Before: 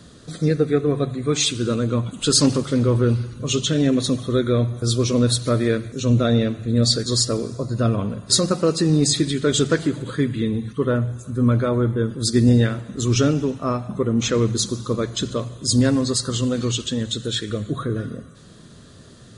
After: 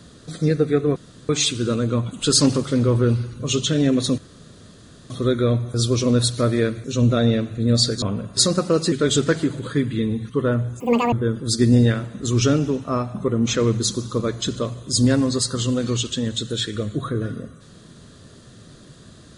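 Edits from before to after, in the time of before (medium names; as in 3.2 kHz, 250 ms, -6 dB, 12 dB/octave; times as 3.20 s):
0.96–1.29 s: room tone
4.18 s: insert room tone 0.92 s
7.10–7.95 s: delete
8.85–9.35 s: delete
11.23–11.87 s: speed 197%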